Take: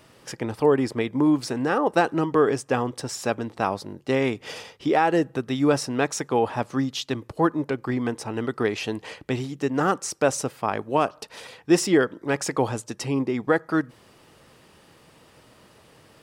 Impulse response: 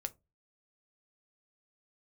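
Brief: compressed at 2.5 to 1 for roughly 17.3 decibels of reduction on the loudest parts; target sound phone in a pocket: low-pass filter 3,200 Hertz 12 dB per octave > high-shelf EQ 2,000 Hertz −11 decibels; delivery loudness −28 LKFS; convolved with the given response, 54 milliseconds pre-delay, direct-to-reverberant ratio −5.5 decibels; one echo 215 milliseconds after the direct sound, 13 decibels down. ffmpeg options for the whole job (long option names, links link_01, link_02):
-filter_complex "[0:a]acompressor=threshold=-41dB:ratio=2.5,aecho=1:1:215:0.224,asplit=2[link_01][link_02];[1:a]atrim=start_sample=2205,adelay=54[link_03];[link_02][link_03]afir=irnorm=-1:irlink=0,volume=7dB[link_04];[link_01][link_04]amix=inputs=2:normalize=0,lowpass=3200,highshelf=frequency=2000:gain=-11,volume=5dB"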